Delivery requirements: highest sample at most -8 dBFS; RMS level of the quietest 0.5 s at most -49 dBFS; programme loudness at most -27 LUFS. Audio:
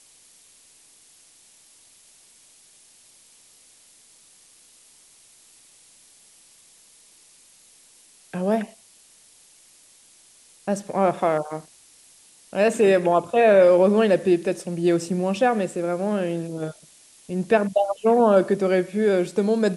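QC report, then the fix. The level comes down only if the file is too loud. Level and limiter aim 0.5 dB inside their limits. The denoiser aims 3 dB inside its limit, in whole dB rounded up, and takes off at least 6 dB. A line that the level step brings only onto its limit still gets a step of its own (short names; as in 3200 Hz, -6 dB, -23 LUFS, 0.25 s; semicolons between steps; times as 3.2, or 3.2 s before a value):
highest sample -5.5 dBFS: fail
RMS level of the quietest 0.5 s -54 dBFS: OK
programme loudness -21.0 LUFS: fail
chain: gain -6.5 dB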